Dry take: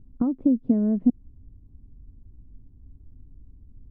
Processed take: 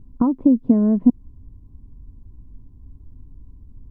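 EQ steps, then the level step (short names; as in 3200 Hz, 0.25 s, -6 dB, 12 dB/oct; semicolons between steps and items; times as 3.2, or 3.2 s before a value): bell 1000 Hz +14 dB 0.27 oct; +5.5 dB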